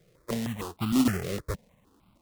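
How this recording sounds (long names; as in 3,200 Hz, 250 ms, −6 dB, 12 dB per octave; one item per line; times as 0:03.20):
aliases and images of a low sample rate 1,600 Hz, jitter 20%
notches that jump at a steady rate 6.5 Hz 250–1,800 Hz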